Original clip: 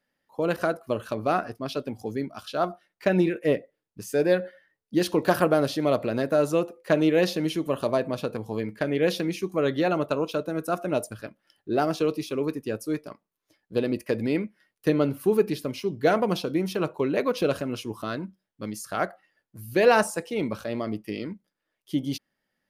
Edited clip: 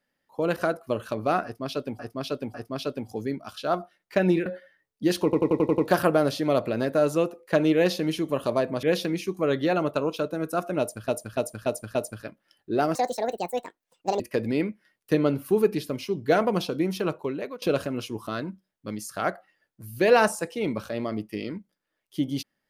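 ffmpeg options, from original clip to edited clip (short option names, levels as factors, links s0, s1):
-filter_complex "[0:a]asplit=18[s0][s1][s2][s3][s4][s5][s6][s7][s8][s9][s10][s11][s12][s13][s14][s15][s16][s17];[s0]atrim=end=1.992[s18];[s1]atrim=start=1.438:end=1.992[s19];[s2]atrim=start=1.438:end=3.362[s20];[s3]atrim=start=4.368:end=5.242[s21];[s4]atrim=start=5.148:end=5.242[s22];[s5]atrim=start=5.148:end=5.242[s23];[s6]atrim=start=5.148:end=5.242[s24];[s7]atrim=start=5.148:end=5.242[s25];[s8]atrim=start=5.148:end=5.242[s26];[s9]atrim=start=5.148:end=8.202[s27];[s10]atrim=start=8.978:end=11.232[s28];[s11]atrim=start=10.938:end=11.232[s29];[s12]atrim=start=10.938:end=11.232[s30];[s13]atrim=start=10.938:end=11.232[s31];[s14]atrim=start=10.938:end=11.944[s32];[s15]atrim=start=11.94:end=13.95,asetpts=PTS-STARTPTS,asetrate=71001,aresample=44100[s33];[s16]atrim=start=13.946:end=17.37,asetpts=PTS-STARTPTS,afade=t=out:st=2.844:d=0.58:silence=0.0944061[s34];[s17]atrim=start=17.37,asetpts=PTS-STARTPTS,afade=t=in:d=0.004:c=hsin:silence=0.0944061[s35];[s18][s19]acrossfade=d=0.004:c1=hsin:c2=hsin[s36];[s36][s20]acrossfade=d=0.004:c1=hsin:c2=hsin[s37];[s37][s21]acrossfade=d=0.004:c1=hsin:c2=hsin[s38];[s38][s22]acrossfade=d=0.004:c1=hsin:c2=hsin[s39];[s39][s23]acrossfade=d=0.004:c1=hsin:c2=hsin[s40];[s40][s24]acrossfade=d=0.004:c1=hsin:c2=hsin[s41];[s41][s25]acrossfade=d=0.004:c1=hsin:c2=hsin[s42];[s42][s26]acrossfade=d=0.004:c1=hsin:c2=hsin[s43];[s43][s27]acrossfade=d=0.004:c1=hsin:c2=hsin[s44];[s44][s28]acrossfade=d=0.004:c1=hsin:c2=hsin[s45];[s45][s29]acrossfade=d=0.004:c1=hsin:c2=hsin[s46];[s46][s30]acrossfade=d=0.004:c1=hsin:c2=hsin[s47];[s47][s31]acrossfade=d=0.004:c1=hsin:c2=hsin[s48];[s48][s32]acrossfade=d=0.004:c1=hsin:c2=hsin[s49];[s49][s33]acrossfade=d=0.004:c1=hsin:c2=hsin[s50];[s34][s35]concat=n=2:v=0:a=1[s51];[s50][s51]acrossfade=d=0.004:c1=hsin:c2=hsin"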